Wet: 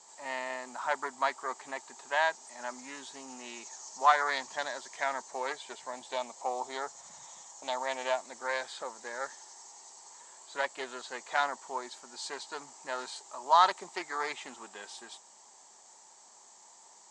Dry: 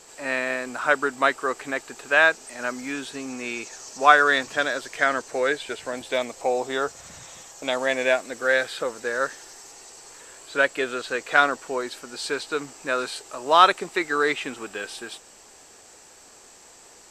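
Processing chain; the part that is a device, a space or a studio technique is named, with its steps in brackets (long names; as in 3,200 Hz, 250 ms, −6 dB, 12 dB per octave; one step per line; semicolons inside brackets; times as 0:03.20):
full-range speaker at full volume (highs frequency-modulated by the lows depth 0.14 ms; loudspeaker in its box 240–8,300 Hz, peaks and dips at 300 Hz −9 dB, 470 Hz −10 dB, 920 Hz +10 dB, 1,500 Hz −7 dB, 2,600 Hz −9 dB, 6,800 Hz +7 dB)
level −8.5 dB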